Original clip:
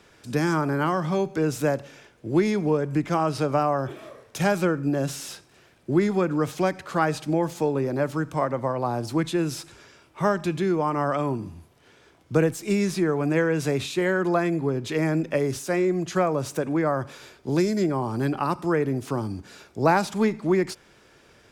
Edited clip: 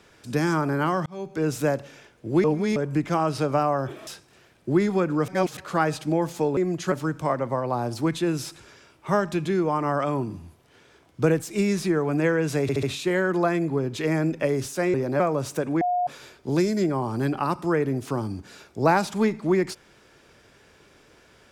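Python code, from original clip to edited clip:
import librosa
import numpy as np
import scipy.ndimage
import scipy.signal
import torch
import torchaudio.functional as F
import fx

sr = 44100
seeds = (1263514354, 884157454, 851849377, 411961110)

y = fx.edit(x, sr, fx.fade_in_span(start_s=1.06, length_s=0.42),
    fx.reverse_span(start_s=2.44, length_s=0.32),
    fx.cut(start_s=4.07, length_s=1.21),
    fx.reverse_span(start_s=6.49, length_s=0.29),
    fx.swap(start_s=7.78, length_s=0.26, other_s=15.85, other_length_s=0.35),
    fx.stutter(start_s=13.74, slice_s=0.07, count=4),
    fx.bleep(start_s=16.81, length_s=0.26, hz=716.0, db=-20.5), tone=tone)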